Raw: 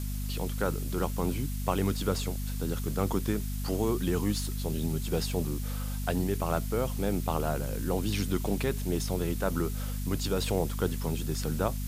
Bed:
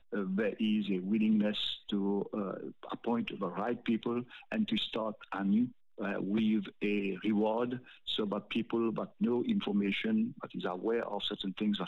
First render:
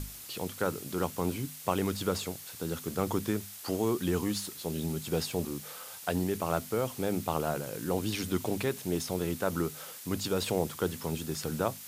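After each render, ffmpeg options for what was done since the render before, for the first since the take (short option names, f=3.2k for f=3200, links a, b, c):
-af "bandreject=f=50:t=h:w=6,bandreject=f=100:t=h:w=6,bandreject=f=150:t=h:w=6,bandreject=f=200:t=h:w=6,bandreject=f=250:t=h:w=6"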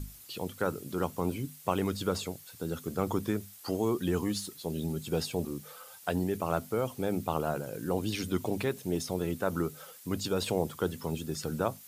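-af "afftdn=nr=9:nf=-46"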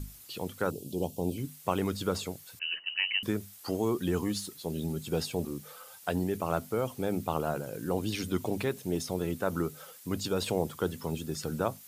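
-filter_complex "[0:a]asettb=1/sr,asplit=3[a][b][c];[a]atrim=end=0.704[d];[b]atrim=start=0.7:end=1.38,asetpts=PTS-STARTPTS,afade=t=in:d=0.004:c=qsin,afade=t=out:st=0.676:d=0.004:c=qsin,asuperstop=centerf=1500:order=8:qfactor=0.79[e];[c]atrim=start=1.376[f];[d][e]acrossfade=d=0.004:c1=hsin:c2=qsin[g];[g][f]acrossfade=d=0.004:c1=qsin:c2=hsin,asettb=1/sr,asplit=3[h][i][j];[h]atrim=end=2.594[k];[i]atrim=start=2.59:end=3.23,asetpts=PTS-STARTPTS,afade=t=in:d=0.004:c=qsin,afade=t=out:st=0.636:d=0.004:c=qsin,lowpass=f=2.6k:t=q:w=0.5098,lowpass=f=2.6k:t=q:w=0.6013,lowpass=f=2.6k:t=q:w=0.9,lowpass=f=2.6k:t=q:w=2.563,afreqshift=-3100[l];[j]atrim=start=3.226[m];[k][l]acrossfade=d=0.004:c1=hsin:c2=qsin[n];[n][m]acrossfade=d=0.004:c1=qsin:c2=hsin"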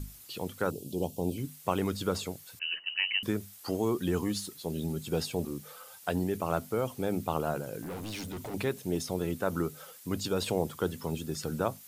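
-filter_complex "[0:a]asettb=1/sr,asplit=3[a][b][c];[a]atrim=end=7.824[d];[b]atrim=start=7.82:end=8.54,asetpts=PTS-STARTPTS,afade=t=in:d=0.004:c=qsin,afade=t=out:st=0.716:d=0.004:c=qsin,volume=36dB,asoftclip=hard,volume=-36dB[e];[c]atrim=start=8.536[f];[d][e]acrossfade=d=0.004:c1=hsin:c2=qsin[g];[g][f]acrossfade=d=0.004:c1=qsin:c2=hsin"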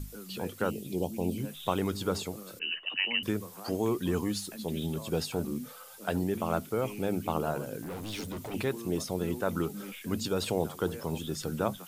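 -filter_complex "[1:a]volume=-11dB[a];[0:a][a]amix=inputs=2:normalize=0"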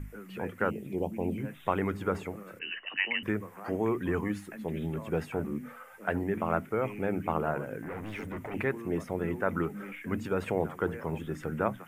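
-af "highshelf=f=2.9k:t=q:w=3:g=-13,bandreject=f=60:t=h:w=6,bandreject=f=120:t=h:w=6,bandreject=f=180:t=h:w=6,bandreject=f=240:t=h:w=6,bandreject=f=300:t=h:w=6"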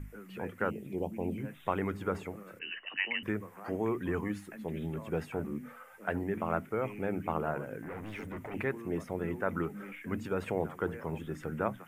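-af "volume=-3dB"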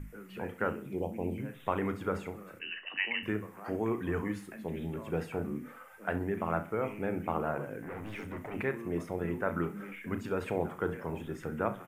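-filter_complex "[0:a]asplit=2[a][b];[b]adelay=35,volume=-11dB[c];[a][c]amix=inputs=2:normalize=0,aecho=1:1:66|132|198|264:0.168|0.0672|0.0269|0.0107"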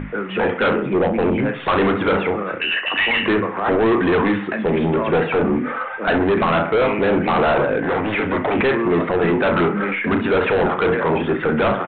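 -filter_complex "[0:a]asplit=2[a][b];[b]highpass=f=720:p=1,volume=24dB,asoftclip=type=tanh:threshold=-15.5dB[c];[a][c]amix=inputs=2:normalize=0,lowpass=f=1.2k:p=1,volume=-6dB,aresample=8000,aeval=exprs='0.224*sin(PI/2*2.82*val(0)/0.224)':c=same,aresample=44100"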